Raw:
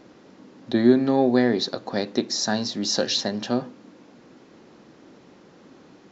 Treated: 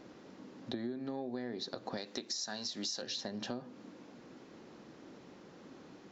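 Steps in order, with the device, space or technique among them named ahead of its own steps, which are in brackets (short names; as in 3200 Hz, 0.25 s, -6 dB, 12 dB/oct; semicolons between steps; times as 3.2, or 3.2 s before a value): 1.97–3.02 tilt +2.5 dB/oct; serial compression, peaks first (compressor 10:1, threshold -28 dBFS, peak gain reduction 17.5 dB; compressor 1.5:1, threshold -38 dBFS, peak gain reduction 5 dB); gain -4 dB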